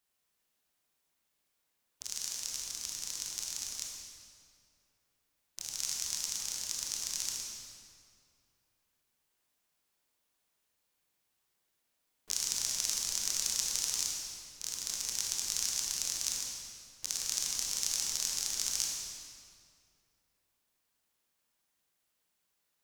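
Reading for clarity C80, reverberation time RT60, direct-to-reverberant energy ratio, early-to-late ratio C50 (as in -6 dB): 1.5 dB, 2.3 s, -2.0 dB, -0.5 dB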